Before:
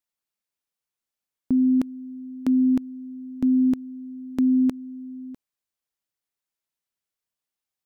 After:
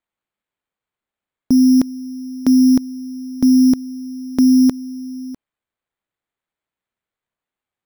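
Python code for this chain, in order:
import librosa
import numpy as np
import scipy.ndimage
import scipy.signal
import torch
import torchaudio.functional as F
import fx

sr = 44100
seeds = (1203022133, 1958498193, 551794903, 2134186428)

y = np.repeat(scipy.signal.resample_poly(x, 1, 8), 8)[:len(x)]
y = y * 10.0 ** (8.0 / 20.0)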